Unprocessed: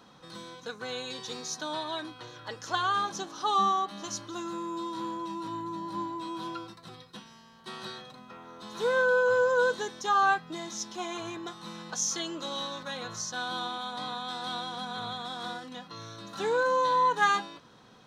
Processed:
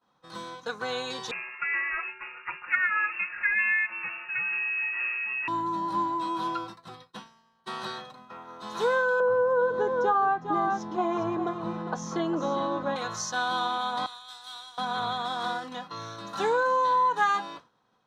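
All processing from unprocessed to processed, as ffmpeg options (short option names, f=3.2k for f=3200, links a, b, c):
-filter_complex "[0:a]asettb=1/sr,asplit=3[a][b][c];[a]atrim=end=1.314[d];[b]atrim=start=1.31:end=5.48,asetpts=PTS-STARTPTS,afade=t=in:d=0.004:c=qsin,afade=t=out:st=4.166:d=0.004:c=qsin,aecho=1:1:5.5:0.77,atrim=end_sample=183897,lowpass=f=2.5k:t=q:w=0.5098,lowpass=f=2.5k:t=q:w=0.6013,lowpass=f=2.5k:t=q:w=0.9,lowpass=f=2.5k:t=q:w=2.563,afreqshift=-2900[e];[c]atrim=start=5.476[f];[d][e]acrossfade=d=0.004:c1=hsin:c2=qsin[g];[g][f]acrossfade=d=0.004:c1=qsin:c2=hsin,asettb=1/sr,asplit=3[h][i][j];[h]atrim=end=9.204[k];[i]atrim=start=9.2:end=12.96,asetpts=PTS-STARTPTS,afade=t=in:d=0.004:c=qsin,afade=t=out:st=3.756:d=0.004:c=qsin,lowpass=f=2.3k:p=1,tiltshelf=f=1.2k:g=8,aecho=1:1:406:0.316,atrim=end_sample=165816[l];[j]atrim=start=12.956[m];[k][l]acrossfade=d=0.004:c1=hsin:c2=qsin[n];[n][m]acrossfade=d=0.004:c1=qsin:c2=hsin,asettb=1/sr,asplit=3[o][p][q];[o]atrim=end=14.064[r];[p]atrim=start=14.06:end=14.78,asetpts=PTS-STARTPTS,afade=t=in:d=0.004:c=qsin,afade=t=out:st=0.716:d=0.004:c=qsin,aderivative,aeval=exprs='val(0)+0.000126*(sin(2*PI*50*n/s)+sin(2*PI*2*50*n/s)/2+sin(2*PI*3*50*n/s)/3+sin(2*PI*4*50*n/s)/4+sin(2*PI*5*50*n/s)/5)':c=same[s];[q]atrim=start=14.776[t];[r][s]acrossfade=d=0.004:c1=hsin:c2=qsin[u];[u][t]acrossfade=d=0.004:c1=qsin:c2=hsin,agate=range=-33dB:threshold=-43dB:ratio=3:detection=peak,equalizer=f=970:w=0.81:g=7.5,acompressor=threshold=-23dB:ratio=5,volume=1.5dB"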